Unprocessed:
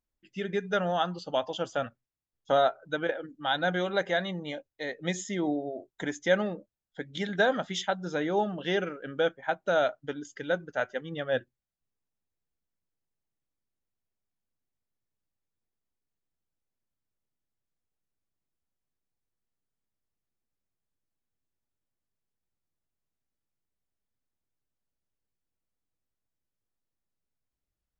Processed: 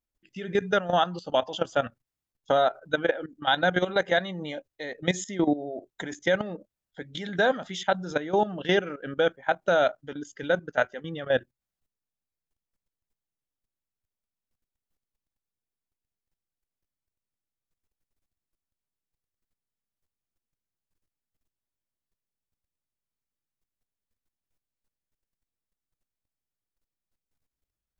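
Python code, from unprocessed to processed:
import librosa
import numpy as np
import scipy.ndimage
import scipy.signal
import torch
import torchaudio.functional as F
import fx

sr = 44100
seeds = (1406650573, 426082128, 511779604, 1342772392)

y = fx.level_steps(x, sr, step_db=14)
y = y * librosa.db_to_amplitude(7.5)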